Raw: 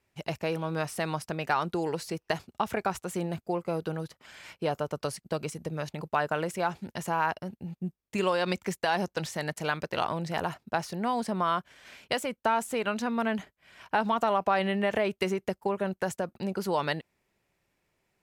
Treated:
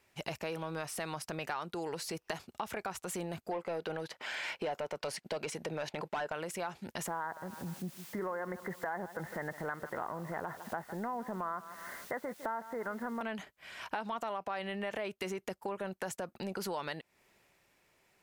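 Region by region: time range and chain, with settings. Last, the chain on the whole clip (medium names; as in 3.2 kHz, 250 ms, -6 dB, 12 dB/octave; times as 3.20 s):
3.51–6.33 s: overdrive pedal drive 19 dB, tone 1.8 kHz, clips at -13.5 dBFS + peaking EQ 1.2 kHz -7.5 dB 0.32 oct
7.07–13.21 s: Chebyshev low-pass 2.1 kHz, order 10 + word length cut 10-bit, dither triangular + feedback delay 155 ms, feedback 39%, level -19.5 dB
whole clip: bass shelf 310 Hz -8.5 dB; transient shaper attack -5 dB, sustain +2 dB; compression 5:1, threshold -44 dBFS; trim +7.5 dB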